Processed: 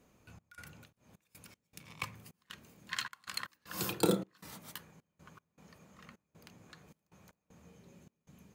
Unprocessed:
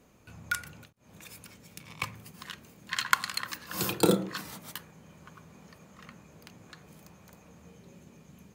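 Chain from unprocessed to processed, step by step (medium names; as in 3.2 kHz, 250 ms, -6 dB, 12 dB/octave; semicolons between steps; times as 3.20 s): trance gate "xx.xxx.x.x" 78 bpm -24 dB; trim -5.5 dB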